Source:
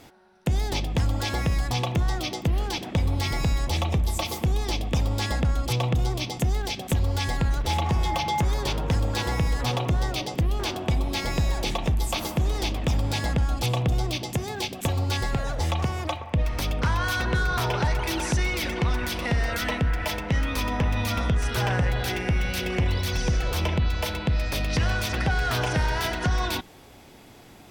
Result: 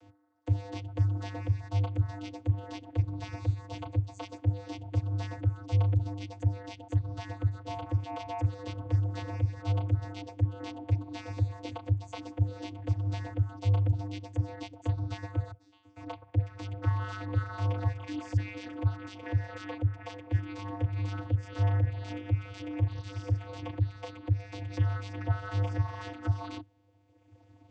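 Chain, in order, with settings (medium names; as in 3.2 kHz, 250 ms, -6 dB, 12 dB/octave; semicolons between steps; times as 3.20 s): reverb removal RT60 1.7 s; 15.51–15.96 s: inharmonic resonator 310 Hz, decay 0.62 s, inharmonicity 0.002; vocoder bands 16, square 99.9 Hz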